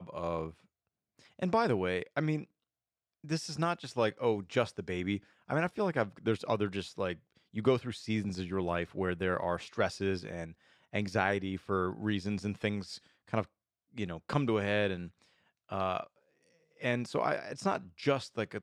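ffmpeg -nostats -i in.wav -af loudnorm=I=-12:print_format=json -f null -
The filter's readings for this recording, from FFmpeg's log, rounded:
"input_i" : "-34.0",
"input_tp" : "-12.9",
"input_lra" : "1.6",
"input_thresh" : "-44.5",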